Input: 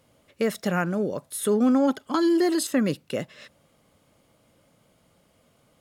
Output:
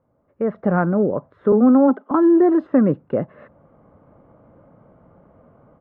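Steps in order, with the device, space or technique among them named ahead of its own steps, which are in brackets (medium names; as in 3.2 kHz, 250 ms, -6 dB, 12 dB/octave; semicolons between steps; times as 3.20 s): 1.52–2.11 s: steep high-pass 190 Hz 96 dB/octave; action camera in a waterproof case (low-pass 1.3 kHz 24 dB/octave; level rider gain up to 16.5 dB; trim -4 dB; AAC 64 kbps 48 kHz)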